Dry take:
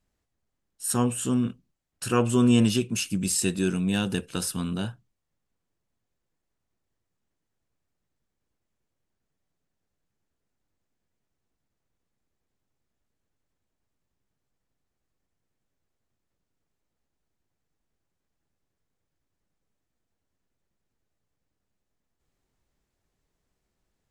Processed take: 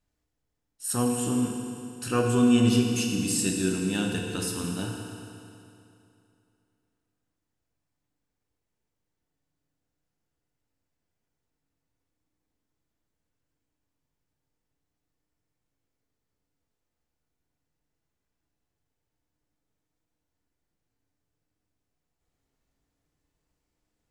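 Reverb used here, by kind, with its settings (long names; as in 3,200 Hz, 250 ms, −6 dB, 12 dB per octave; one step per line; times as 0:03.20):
feedback delay network reverb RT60 2.7 s, high-frequency decay 0.9×, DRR 0.5 dB
level −3.5 dB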